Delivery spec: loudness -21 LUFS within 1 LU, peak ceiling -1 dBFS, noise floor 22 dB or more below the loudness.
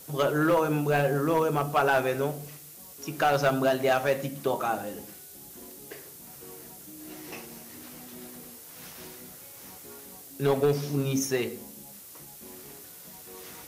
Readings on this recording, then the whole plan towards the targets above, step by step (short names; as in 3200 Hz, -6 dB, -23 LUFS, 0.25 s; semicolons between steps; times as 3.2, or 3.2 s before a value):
clipped 0.5%; flat tops at -16.5 dBFS; noise floor -47 dBFS; noise floor target -49 dBFS; loudness -26.5 LUFS; peak -16.5 dBFS; loudness target -21.0 LUFS
-> clip repair -16.5 dBFS; denoiser 6 dB, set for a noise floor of -47 dBFS; gain +5.5 dB